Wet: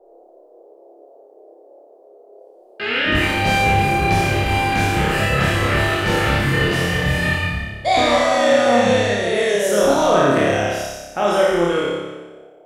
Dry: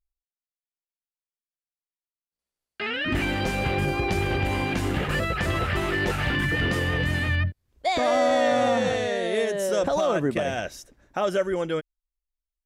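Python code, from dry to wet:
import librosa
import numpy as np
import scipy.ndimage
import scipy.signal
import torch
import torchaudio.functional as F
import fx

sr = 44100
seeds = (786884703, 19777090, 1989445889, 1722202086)

y = fx.spec_trails(x, sr, decay_s=1.1)
y = fx.dmg_noise_band(y, sr, seeds[0], low_hz=350.0, high_hz=700.0, level_db=-53.0)
y = fx.room_flutter(y, sr, wall_m=5.0, rt60_s=0.86)
y = y * 10.0 ** (2.0 / 20.0)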